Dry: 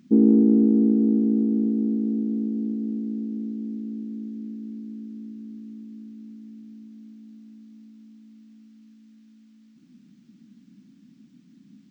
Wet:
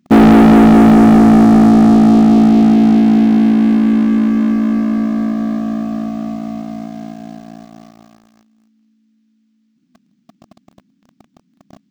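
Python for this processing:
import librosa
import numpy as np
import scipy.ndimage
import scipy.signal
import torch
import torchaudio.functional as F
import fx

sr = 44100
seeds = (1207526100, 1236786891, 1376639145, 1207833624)

y = fx.leveller(x, sr, passes=5)
y = F.gain(torch.from_numpy(y), 3.5).numpy()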